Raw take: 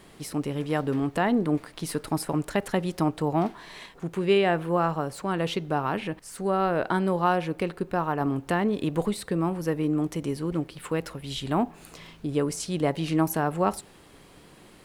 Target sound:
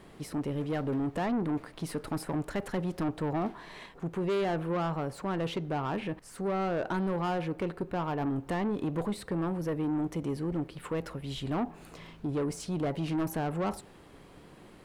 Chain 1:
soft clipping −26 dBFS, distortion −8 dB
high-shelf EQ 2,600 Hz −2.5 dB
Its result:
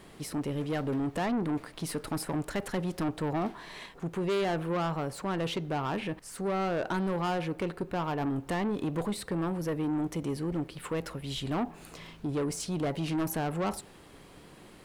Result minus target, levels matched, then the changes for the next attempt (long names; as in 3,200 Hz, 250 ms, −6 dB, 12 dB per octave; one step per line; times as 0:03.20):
4,000 Hz band +4.0 dB
change: high-shelf EQ 2,600 Hz −9 dB